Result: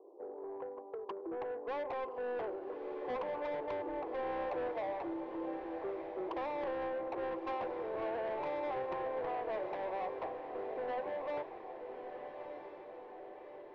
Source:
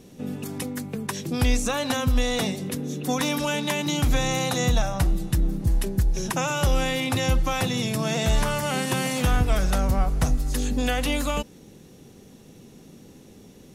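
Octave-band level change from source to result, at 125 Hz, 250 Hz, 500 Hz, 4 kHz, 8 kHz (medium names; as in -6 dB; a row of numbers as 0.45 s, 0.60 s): -36.0 dB, -18.0 dB, -7.0 dB, -29.5 dB, under -40 dB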